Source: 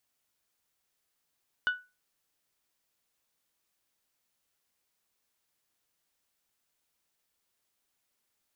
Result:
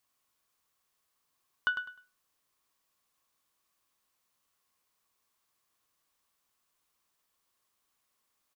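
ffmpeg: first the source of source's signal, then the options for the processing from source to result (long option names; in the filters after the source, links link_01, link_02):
-f lavfi -i "aevalsrc='0.0891*pow(10,-3*t/0.27)*sin(2*PI*1480*t)+0.0251*pow(10,-3*t/0.166)*sin(2*PI*2960*t)+0.00708*pow(10,-3*t/0.146)*sin(2*PI*3552*t)+0.002*pow(10,-3*t/0.125)*sin(2*PI*4440*t)+0.000562*pow(10,-3*t/0.102)*sin(2*PI*5920*t)':duration=0.89:sample_rate=44100"
-af "equalizer=frequency=1100:width_type=o:width=0.26:gain=11.5,aecho=1:1:102|204|306:0.355|0.0852|0.0204"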